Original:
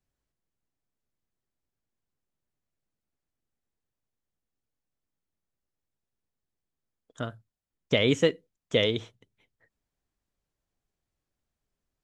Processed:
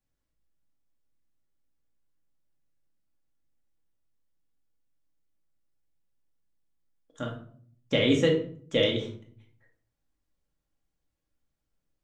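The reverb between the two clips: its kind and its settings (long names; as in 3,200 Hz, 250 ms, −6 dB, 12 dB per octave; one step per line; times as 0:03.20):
rectangular room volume 620 cubic metres, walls furnished, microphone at 2.3 metres
level −3.5 dB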